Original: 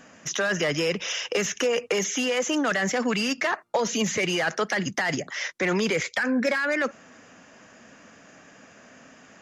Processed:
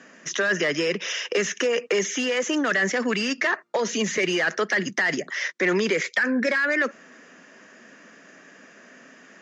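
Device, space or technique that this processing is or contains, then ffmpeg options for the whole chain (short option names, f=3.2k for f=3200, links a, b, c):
television speaker: -af "highpass=f=170:w=0.5412,highpass=f=170:w=1.3066,equalizer=f=380:t=q:w=4:g=5,equalizer=f=800:t=q:w=4:g=-5,equalizer=f=1.8k:t=q:w=4:g=6,lowpass=f=7.3k:w=0.5412,lowpass=f=7.3k:w=1.3066"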